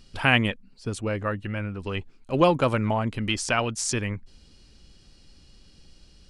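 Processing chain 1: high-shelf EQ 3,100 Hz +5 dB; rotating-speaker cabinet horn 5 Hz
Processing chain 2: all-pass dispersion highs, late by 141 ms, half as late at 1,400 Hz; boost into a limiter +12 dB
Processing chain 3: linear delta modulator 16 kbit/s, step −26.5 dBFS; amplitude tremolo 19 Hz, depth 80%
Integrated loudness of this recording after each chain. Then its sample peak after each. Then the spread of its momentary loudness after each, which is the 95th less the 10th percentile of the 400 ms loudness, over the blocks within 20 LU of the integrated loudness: −27.0, −15.0, −31.5 LKFS; −1.5, −1.0, −8.5 dBFS; 13, 10, 14 LU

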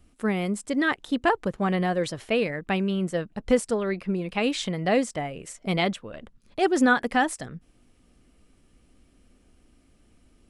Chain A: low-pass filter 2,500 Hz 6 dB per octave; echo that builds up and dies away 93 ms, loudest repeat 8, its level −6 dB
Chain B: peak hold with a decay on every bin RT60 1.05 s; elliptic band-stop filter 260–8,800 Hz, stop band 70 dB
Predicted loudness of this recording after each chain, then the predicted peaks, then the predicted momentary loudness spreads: −21.0, −29.5 LKFS; −6.0, −13.0 dBFS; 9, 11 LU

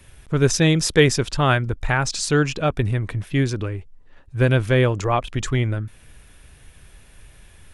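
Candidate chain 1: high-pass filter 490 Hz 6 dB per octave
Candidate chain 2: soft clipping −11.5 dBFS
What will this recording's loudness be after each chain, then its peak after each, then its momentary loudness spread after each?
−24.0, −22.5 LKFS; −3.0, −11.5 dBFS; 13, 9 LU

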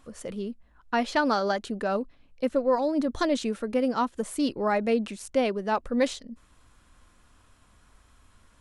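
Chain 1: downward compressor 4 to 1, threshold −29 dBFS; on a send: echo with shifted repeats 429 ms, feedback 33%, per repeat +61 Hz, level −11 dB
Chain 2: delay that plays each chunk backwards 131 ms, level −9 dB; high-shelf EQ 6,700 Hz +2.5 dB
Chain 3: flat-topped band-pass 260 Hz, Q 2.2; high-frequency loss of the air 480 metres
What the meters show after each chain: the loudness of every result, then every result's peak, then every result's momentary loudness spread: −33.5, −27.0, −34.0 LKFS; −18.5, −11.5, −19.5 dBFS; 10, 11, 12 LU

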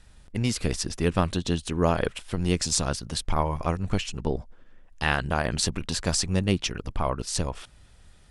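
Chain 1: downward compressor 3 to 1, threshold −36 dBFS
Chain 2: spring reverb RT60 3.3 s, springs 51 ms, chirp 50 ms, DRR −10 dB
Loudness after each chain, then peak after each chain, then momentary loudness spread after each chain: −38.0, −18.0 LKFS; −16.5, −1.0 dBFS; 7, 8 LU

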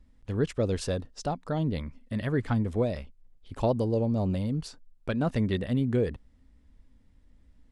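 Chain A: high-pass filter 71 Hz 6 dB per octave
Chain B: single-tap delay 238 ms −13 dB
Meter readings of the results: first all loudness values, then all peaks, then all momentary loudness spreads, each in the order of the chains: −30.0, −29.5 LKFS; −13.5, −14.0 dBFS; 9, 11 LU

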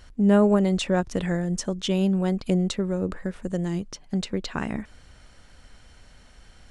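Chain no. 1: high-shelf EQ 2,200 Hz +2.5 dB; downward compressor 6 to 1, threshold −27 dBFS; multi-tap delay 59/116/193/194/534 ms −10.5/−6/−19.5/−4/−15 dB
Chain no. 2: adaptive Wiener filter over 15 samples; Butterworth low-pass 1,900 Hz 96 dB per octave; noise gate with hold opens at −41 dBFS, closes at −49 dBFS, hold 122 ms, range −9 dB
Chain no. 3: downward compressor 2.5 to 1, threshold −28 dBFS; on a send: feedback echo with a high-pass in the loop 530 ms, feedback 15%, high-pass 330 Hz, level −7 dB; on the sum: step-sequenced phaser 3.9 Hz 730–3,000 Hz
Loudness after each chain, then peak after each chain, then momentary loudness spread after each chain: −29.5, −25.5, −35.0 LKFS; −14.5, −9.0, −19.0 dBFS; 10, 12, 14 LU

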